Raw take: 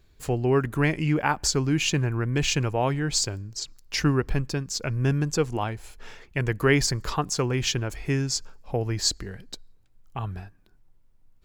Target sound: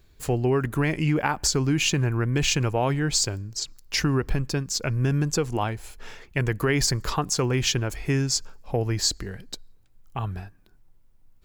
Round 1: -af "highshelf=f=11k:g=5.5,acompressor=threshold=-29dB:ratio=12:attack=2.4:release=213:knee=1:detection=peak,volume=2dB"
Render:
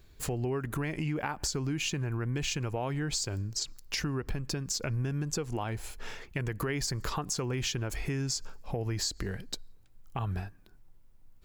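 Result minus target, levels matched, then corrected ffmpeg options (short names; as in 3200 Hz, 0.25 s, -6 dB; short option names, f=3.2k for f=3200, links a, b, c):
compressor: peak gain reduction +10 dB
-af "highshelf=f=11k:g=5.5,acompressor=threshold=-18dB:ratio=12:attack=2.4:release=213:knee=1:detection=peak,volume=2dB"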